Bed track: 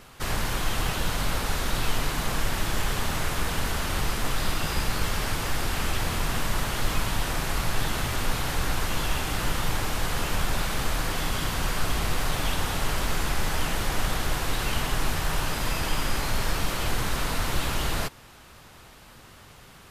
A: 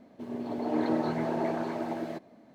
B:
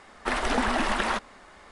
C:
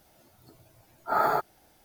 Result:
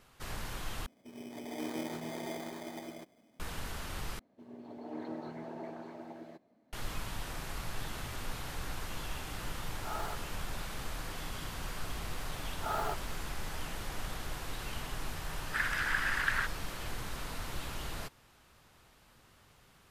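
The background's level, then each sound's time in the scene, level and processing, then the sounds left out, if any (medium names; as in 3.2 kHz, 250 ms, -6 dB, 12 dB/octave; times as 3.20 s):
bed track -13 dB
0.86 s: replace with A -10.5 dB + sample-and-hold 16×
4.19 s: replace with A -13.5 dB
8.75 s: add C -16.5 dB + gain riding
11.54 s: add C -11 dB
15.28 s: add B -11.5 dB + resonant high-pass 1.6 kHz, resonance Q 4.8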